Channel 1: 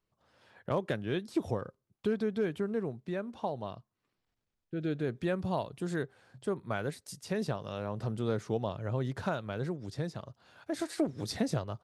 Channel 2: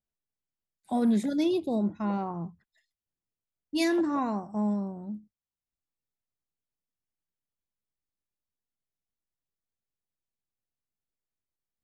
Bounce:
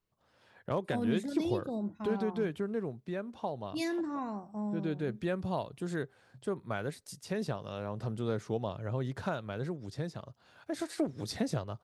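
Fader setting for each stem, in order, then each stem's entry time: -1.5, -8.0 dB; 0.00, 0.00 s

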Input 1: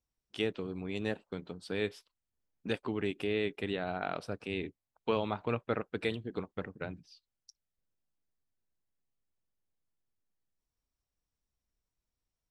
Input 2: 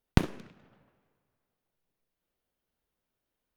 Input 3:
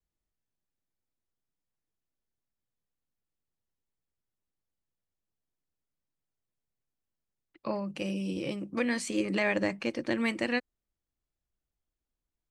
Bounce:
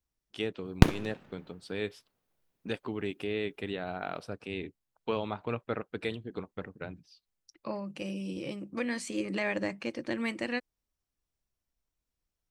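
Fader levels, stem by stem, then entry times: -1.0, +3.0, -3.5 dB; 0.00, 0.65, 0.00 s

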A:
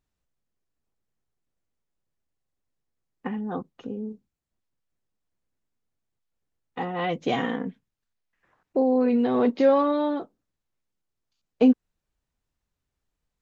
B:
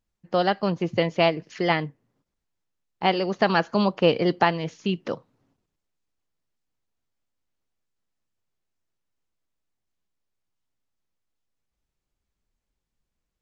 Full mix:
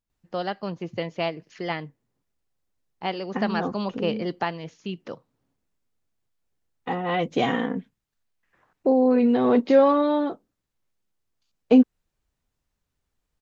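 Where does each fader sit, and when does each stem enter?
+2.5, -7.0 dB; 0.10, 0.00 s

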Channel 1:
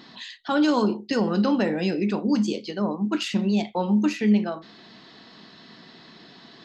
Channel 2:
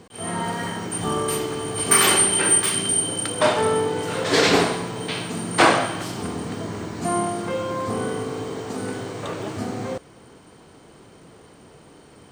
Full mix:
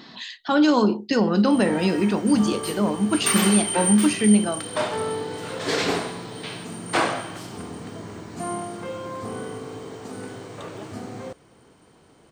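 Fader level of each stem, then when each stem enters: +3.0, -6.5 dB; 0.00, 1.35 s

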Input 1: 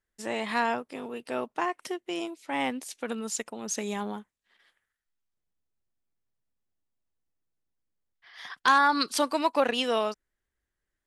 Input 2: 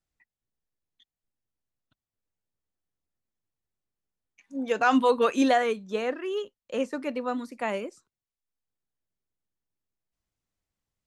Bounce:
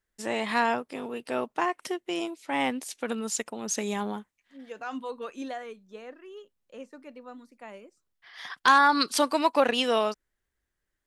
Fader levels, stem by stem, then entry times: +2.0, -14.5 dB; 0.00, 0.00 s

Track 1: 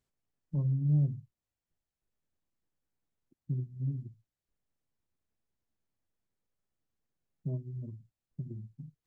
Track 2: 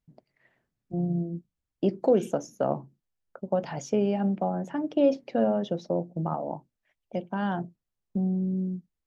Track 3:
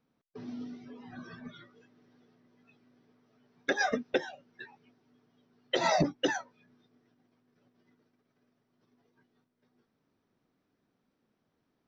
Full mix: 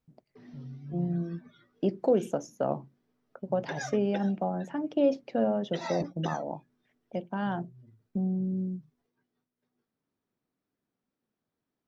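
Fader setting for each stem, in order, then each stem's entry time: -14.0, -2.5, -9.0 dB; 0.00, 0.00, 0.00 s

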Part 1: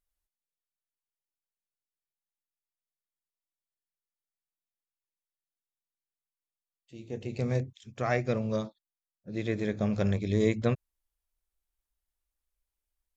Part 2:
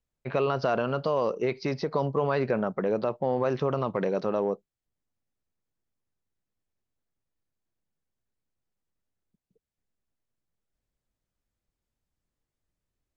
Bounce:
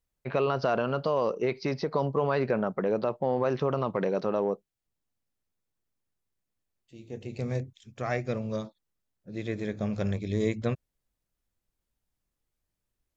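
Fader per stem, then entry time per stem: -2.0, -0.5 dB; 0.00, 0.00 s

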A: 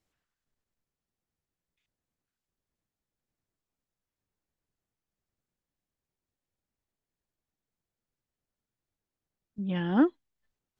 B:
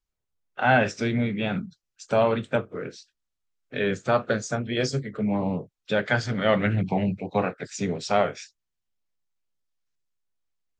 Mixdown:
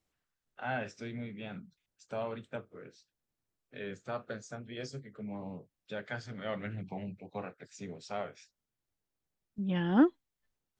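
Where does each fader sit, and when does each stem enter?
-1.0, -16.0 dB; 0.00, 0.00 s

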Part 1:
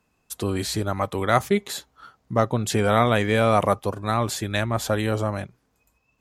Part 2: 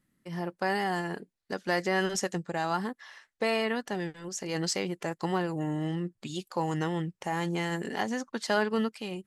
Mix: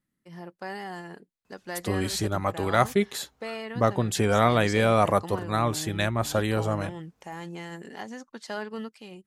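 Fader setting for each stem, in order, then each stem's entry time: -2.0, -7.5 dB; 1.45, 0.00 s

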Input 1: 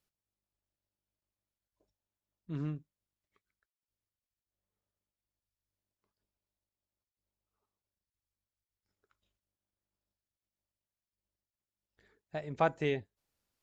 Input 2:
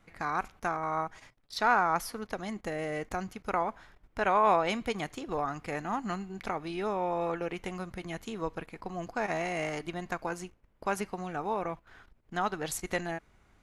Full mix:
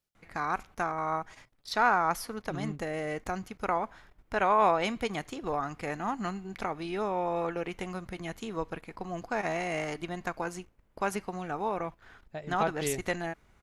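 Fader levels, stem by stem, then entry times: -1.0, +0.5 dB; 0.00, 0.15 s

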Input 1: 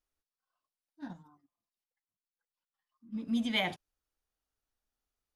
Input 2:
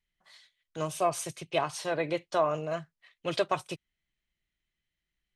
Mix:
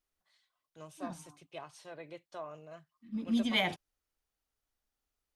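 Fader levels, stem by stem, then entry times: +1.0, -17.0 dB; 0.00, 0.00 s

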